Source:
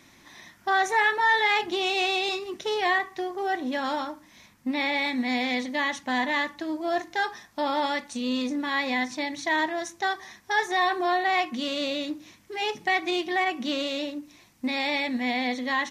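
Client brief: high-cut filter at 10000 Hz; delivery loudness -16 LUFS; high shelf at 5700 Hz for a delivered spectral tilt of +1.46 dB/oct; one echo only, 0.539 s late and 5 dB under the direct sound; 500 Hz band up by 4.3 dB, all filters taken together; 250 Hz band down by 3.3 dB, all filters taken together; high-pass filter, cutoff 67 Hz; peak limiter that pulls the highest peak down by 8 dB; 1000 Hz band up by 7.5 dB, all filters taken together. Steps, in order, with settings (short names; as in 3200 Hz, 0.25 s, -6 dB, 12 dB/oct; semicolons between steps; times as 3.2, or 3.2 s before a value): HPF 67 Hz; LPF 10000 Hz; bell 250 Hz -6.5 dB; bell 500 Hz +5 dB; bell 1000 Hz +8.5 dB; high shelf 5700 Hz -4.5 dB; limiter -14.5 dBFS; echo 0.539 s -5 dB; gain +8 dB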